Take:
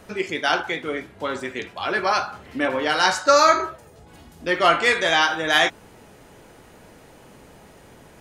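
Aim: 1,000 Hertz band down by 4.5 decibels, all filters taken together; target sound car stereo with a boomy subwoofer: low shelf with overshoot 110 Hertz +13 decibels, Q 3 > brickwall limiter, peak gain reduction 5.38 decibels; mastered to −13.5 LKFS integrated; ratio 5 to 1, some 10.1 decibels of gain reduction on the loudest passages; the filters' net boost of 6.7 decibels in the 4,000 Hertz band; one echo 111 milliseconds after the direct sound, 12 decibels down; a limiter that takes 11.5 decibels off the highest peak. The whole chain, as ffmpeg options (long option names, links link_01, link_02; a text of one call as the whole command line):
ffmpeg -i in.wav -af "equalizer=frequency=1000:width_type=o:gain=-7,equalizer=frequency=4000:width_type=o:gain=9,acompressor=threshold=-23dB:ratio=5,alimiter=limit=-21dB:level=0:latency=1,lowshelf=frequency=110:width_type=q:width=3:gain=13,aecho=1:1:111:0.251,volume=22dB,alimiter=limit=-3dB:level=0:latency=1" out.wav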